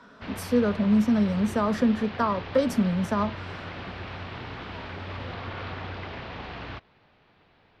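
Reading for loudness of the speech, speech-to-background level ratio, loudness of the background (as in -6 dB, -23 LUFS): -25.0 LUFS, 12.5 dB, -37.5 LUFS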